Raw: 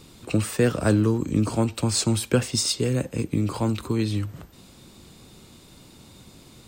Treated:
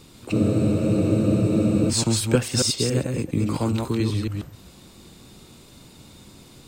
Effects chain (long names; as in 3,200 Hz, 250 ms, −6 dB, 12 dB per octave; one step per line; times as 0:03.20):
delay that plays each chunk backwards 138 ms, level −3.5 dB
frozen spectrum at 0:00.34, 1.56 s